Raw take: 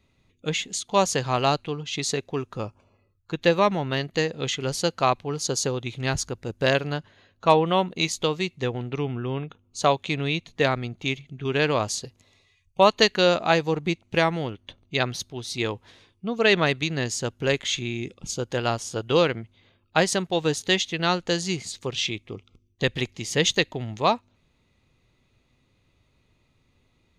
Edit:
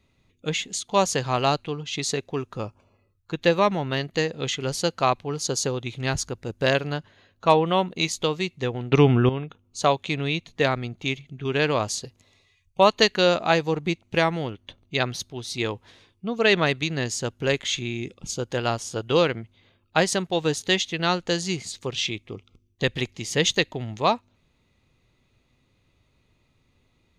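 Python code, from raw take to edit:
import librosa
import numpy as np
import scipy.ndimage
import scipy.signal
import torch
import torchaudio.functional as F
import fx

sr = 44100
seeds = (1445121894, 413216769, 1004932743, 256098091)

y = fx.edit(x, sr, fx.clip_gain(start_s=8.92, length_s=0.37, db=11.5), tone=tone)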